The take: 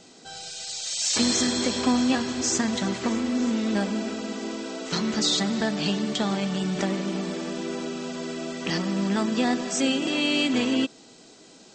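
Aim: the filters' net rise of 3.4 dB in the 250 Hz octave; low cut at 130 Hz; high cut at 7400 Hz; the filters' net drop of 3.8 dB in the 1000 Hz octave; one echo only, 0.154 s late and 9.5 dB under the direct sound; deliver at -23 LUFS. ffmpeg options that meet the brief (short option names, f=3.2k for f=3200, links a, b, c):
-af "highpass=130,lowpass=7.4k,equalizer=f=250:t=o:g=4.5,equalizer=f=1k:t=o:g=-5.5,aecho=1:1:154:0.335"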